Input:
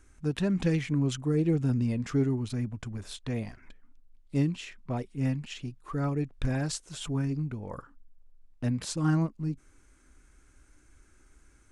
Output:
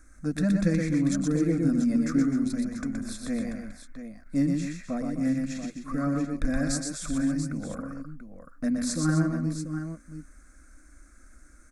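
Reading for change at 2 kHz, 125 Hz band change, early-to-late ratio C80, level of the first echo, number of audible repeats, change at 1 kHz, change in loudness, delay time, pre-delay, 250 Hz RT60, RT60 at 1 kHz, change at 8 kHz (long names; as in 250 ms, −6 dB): +3.5 dB, −1.5 dB, no reverb audible, −4.0 dB, 3, +1.0 dB, +3.0 dB, 121 ms, no reverb audible, no reverb audible, no reverb audible, +6.0 dB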